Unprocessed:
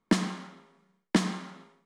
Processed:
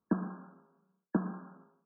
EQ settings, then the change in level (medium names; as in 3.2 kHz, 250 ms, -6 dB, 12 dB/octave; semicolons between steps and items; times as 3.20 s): high-pass 55 Hz; brick-wall FIR low-pass 1.7 kHz; distance through air 440 m; -5.5 dB